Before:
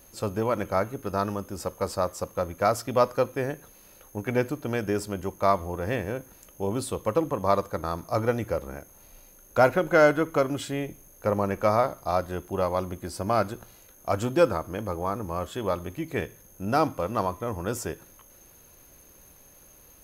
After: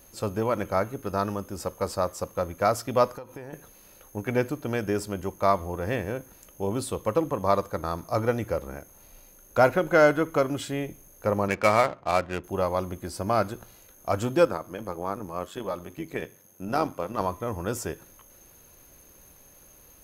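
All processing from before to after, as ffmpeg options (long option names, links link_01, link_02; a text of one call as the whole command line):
ffmpeg -i in.wav -filter_complex "[0:a]asettb=1/sr,asplit=3[link_01][link_02][link_03];[link_01]atrim=end=3.134[link_04];[link_02]atrim=start=3.13:end=3.53,asetpts=PTS-STARTPTS,afade=type=in:duration=0.004:curve=qsin,afade=type=out:start_time=0.396:duration=0.004:curve=qsin,equalizer=frequency=870:width_type=o:width=0.25:gain=7.5,acompressor=threshold=-35dB:ratio=16:attack=3.2:release=140:knee=1:detection=peak,aeval=exprs='val(0)+0.000891*sin(2*PI*960*n/s)':channel_layout=same[link_05];[link_03]atrim=start=3.526[link_06];[link_04][link_05]acrossfade=duration=0.004:curve1=hsin:curve2=qsin[link_07];[link_07][link_06]acrossfade=duration=0.004:curve1=qsin:curve2=hsin,asettb=1/sr,asplit=3[link_08][link_09][link_10];[link_08]atrim=end=11.484[link_11];[link_09]atrim=start=11.48:end=12.44,asetpts=PTS-STARTPTS,afade=type=in:duration=0.004:curve=qsin,afade=type=out:start_time=0.956:duration=0.004:curve=qsin,highpass=84,equalizer=frequency=2500:width_type=o:width=1:gain=14,adynamicsmooth=sensitivity=6.5:basefreq=850[link_12];[link_10]atrim=start=12.436[link_13];[link_11][link_12]acrossfade=duration=0.004:curve1=hsin:curve2=qsin[link_14];[link_14][link_13]acrossfade=duration=0.004:curve1=qsin:curve2=hsin,asettb=1/sr,asplit=3[link_15][link_16][link_17];[link_15]atrim=end=14.454[link_18];[link_16]atrim=start=14.45:end=17.21,asetpts=PTS-STARTPTS,afade=type=in:duration=0.004:curve=qsin,afade=type=out:start_time=2.756:duration=0.004:curve=qsin,highpass=130,tremolo=f=93:d=0.621[link_19];[link_17]atrim=start=17.206[link_20];[link_18][link_19]acrossfade=duration=0.004:curve1=hsin:curve2=qsin[link_21];[link_21][link_20]acrossfade=duration=0.004:curve1=qsin:curve2=hsin" out.wav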